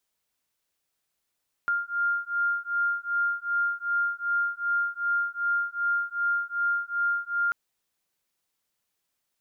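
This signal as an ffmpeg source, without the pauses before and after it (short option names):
-f lavfi -i "aevalsrc='0.0422*(sin(2*PI*1400*t)+sin(2*PI*1402.6*t))':d=5.84:s=44100"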